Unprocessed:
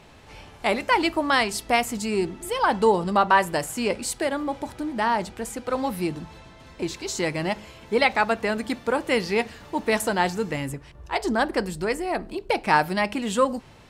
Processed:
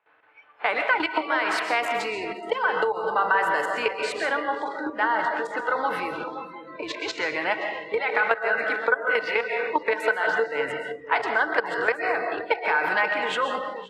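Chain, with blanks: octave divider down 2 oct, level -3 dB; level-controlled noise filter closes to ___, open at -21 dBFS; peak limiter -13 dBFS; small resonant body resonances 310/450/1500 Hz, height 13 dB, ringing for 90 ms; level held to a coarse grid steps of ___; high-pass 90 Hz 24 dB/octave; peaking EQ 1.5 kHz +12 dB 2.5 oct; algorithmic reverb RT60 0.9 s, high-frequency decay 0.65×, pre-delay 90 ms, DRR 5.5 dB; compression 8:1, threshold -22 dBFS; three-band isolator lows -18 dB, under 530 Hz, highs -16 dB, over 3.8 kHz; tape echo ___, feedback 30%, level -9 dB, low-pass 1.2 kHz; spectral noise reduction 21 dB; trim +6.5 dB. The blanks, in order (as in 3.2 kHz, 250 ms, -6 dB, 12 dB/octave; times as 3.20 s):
2.4 kHz, 16 dB, 524 ms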